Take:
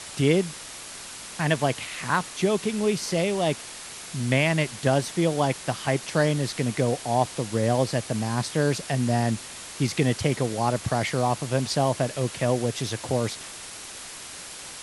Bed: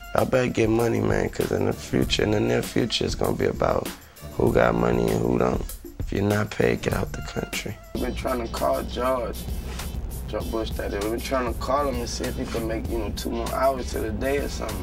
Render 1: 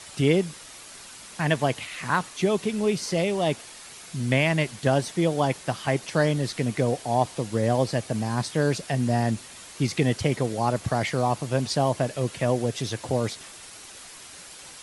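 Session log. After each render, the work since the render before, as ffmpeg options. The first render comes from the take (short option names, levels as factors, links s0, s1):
-af "afftdn=nr=6:nf=-40"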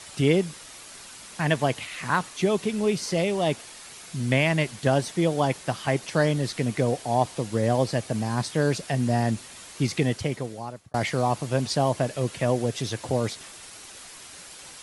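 -filter_complex "[0:a]asplit=2[s0][s1];[s0]atrim=end=10.94,asetpts=PTS-STARTPTS,afade=t=out:st=9.91:d=1.03[s2];[s1]atrim=start=10.94,asetpts=PTS-STARTPTS,afade=t=in:d=0.004:c=hsin[s3];[s2][s3]concat=n=2:v=0:a=1"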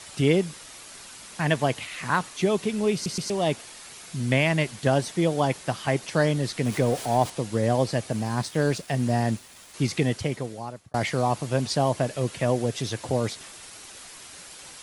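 -filter_complex "[0:a]asettb=1/sr,asplit=3[s0][s1][s2];[s0]atrim=end=6.654[s3];[s1]atrim=start=6.65:end=7.3,asetpts=PTS-STARTPTS,afade=t=in:d=0.004:c=qsin,afade=t=out:st=0.646:d=0.004:c=qsin,aeval=exprs='val(0)+0.5*0.0188*sgn(val(0))':c=same[s4];[s2]atrim=start=7.296[s5];[s3][s4]acrossfade=d=0.004:c1=hsin:c2=qsin[s6];[s6][s5]acrossfade=d=0.004:c1=qsin:c2=hsin,asettb=1/sr,asplit=3[s7][s8][s9];[s7]atrim=end=8.114[s10];[s8]atrim=start=8.11:end=9.74,asetpts=PTS-STARTPTS,afade=t=in:d=0.004:c=qsin,afade=t=out:st=1.626:d=0.004:c=qsin,aeval=exprs='sgn(val(0))*max(abs(val(0))-0.00398,0)':c=same[s11];[s9]atrim=start=9.736[s12];[s10][s11]acrossfade=d=0.004:c1=hsin:c2=qsin[s13];[s13][s12]acrossfade=d=0.004:c1=qsin:c2=hsin,asplit=4[s14][s15][s16][s17];[s14]atrim=end=3.062[s18];[s15]atrim=start=2.938:end=3.062[s19];[s16]atrim=start=2.938:end=3.062[s20];[s17]atrim=start=3.298[s21];[s18][s19]acrossfade=d=0.004:c1=hsin:c2=hsin[s22];[s22][s20]acrossfade=d=0.004:c1=hsin:c2=hsin[s23];[s23][s21]acrossfade=d=0.004:c1=hsin:c2=hsin"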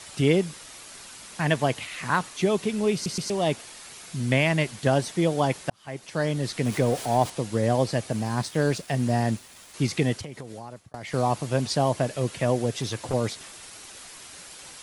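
-filter_complex "[0:a]asettb=1/sr,asplit=3[s0][s1][s2];[s0]atrim=end=10.204[s3];[s1]atrim=start=10.2:end=11.14,asetpts=PTS-STARTPTS,afade=t=in:d=0.004:c=qsin,afade=t=out:st=0.936:d=0.004:c=qsin,acompressor=threshold=0.0224:ratio=8:attack=3.2:release=140:knee=1:detection=peak[s4];[s2]atrim=start=11.136[s5];[s3][s4]acrossfade=d=0.004:c1=hsin:c2=qsin[s6];[s6][s5]acrossfade=d=0.004:c1=qsin:c2=hsin,asettb=1/sr,asplit=3[s7][s8][s9];[s7]atrim=end=12.714[s10];[s8]atrim=start=12.71:end=13.14,asetpts=PTS-STARTPTS,afade=t=in:d=0.004:c=qsin,afade=t=out:st=0.426:d=0.004:c=qsin,volume=10.6,asoftclip=hard,volume=0.0944[s11];[s9]atrim=start=13.136[s12];[s10][s11]acrossfade=d=0.004:c1=hsin:c2=qsin[s13];[s13][s12]acrossfade=d=0.004:c1=qsin:c2=hsin,asplit=2[s14][s15];[s14]atrim=end=5.7,asetpts=PTS-STARTPTS,afade=t=out:st=5.696:d=0.004:c=hsin[s16];[s15]atrim=start=5.7,asetpts=PTS-STARTPTS,afade=t=in:d=0.84[s17];[s16][s17]concat=n=2:v=0:a=1"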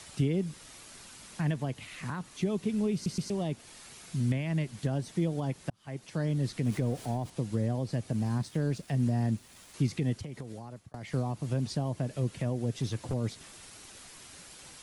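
-filter_complex "[0:a]alimiter=limit=0.168:level=0:latency=1:release=182,acrossover=split=300[s0][s1];[s1]acompressor=threshold=0.00112:ratio=1.5[s2];[s0][s2]amix=inputs=2:normalize=0"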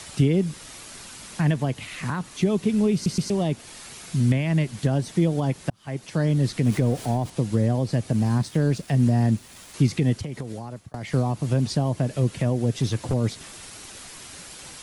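-af "volume=2.66"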